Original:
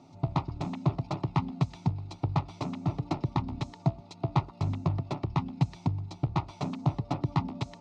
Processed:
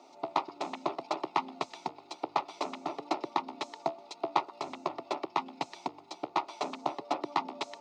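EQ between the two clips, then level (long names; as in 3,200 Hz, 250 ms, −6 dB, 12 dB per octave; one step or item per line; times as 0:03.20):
high-pass filter 370 Hz 24 dB per octave
+4.0 dB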